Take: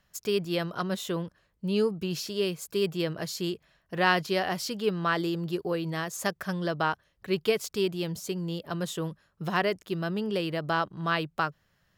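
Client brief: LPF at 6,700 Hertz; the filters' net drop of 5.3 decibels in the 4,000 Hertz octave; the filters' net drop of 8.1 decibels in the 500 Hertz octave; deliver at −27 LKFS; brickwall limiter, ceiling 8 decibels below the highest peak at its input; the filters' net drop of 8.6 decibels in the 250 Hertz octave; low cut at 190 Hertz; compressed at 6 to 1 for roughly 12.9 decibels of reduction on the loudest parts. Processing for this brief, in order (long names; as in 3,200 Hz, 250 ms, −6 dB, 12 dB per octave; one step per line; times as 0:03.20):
high-pass filter 190 Hz
low-pass filter 6,700 Hz
parametric band 250 Hz −8 dB
parametric band 500 Hz −7.5 dB
parametric band 4,000 Hz −7 dB
downward compressor 6 to 1, threshold −35 dBFS
level +15 dB
brickwall limiter −14 dBFS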